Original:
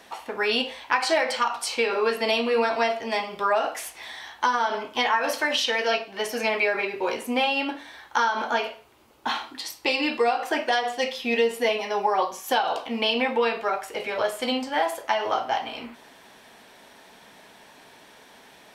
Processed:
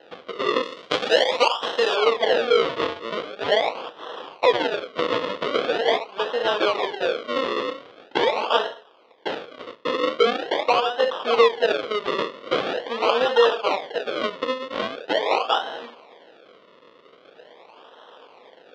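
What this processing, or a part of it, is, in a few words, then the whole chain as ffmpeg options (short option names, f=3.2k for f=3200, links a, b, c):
circuit-bent sampling toy: -filter_complex "[0:a]acrusher=samples=38:mix=1:aa=0.000001:lfo=1:lforange=38:lforate=0.43,highpass=480,equalizer=f=490:t=q:w=4:g=8,equalizer=f=1.1k:t=q:w=4:g=4,equalizer=f=3.3k:t=q:w=4:g=7,lowpass=f=4.2k:w=0.5412,lowpass=f=4.2k:w=1.3066,asettb=1/sr,asplit=3[a][b][c];[a]atrim=end=0.634[d];[b]atrim=start=0.63:end=1.96,asetpts=PTS-STARTPTS,afade=t=in:d=0.004:c=qsin,afade=t=out:st=1.326:d=0.004:c=qsin,aemphasis=mode=production:type=75fm[e];[c]atrim=start=1.956[f];[d][e]acrossfade=d=0.004:c1=hsin:c2=qsin[g];[g][f]acrossfade=d=0.004:c1=qsin:c2=hsin,volume=3dB"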